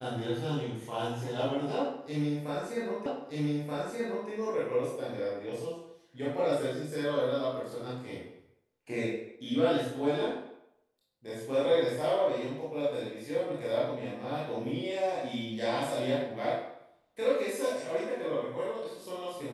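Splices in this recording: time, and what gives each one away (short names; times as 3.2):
3.06 repeat of the last 1.23 s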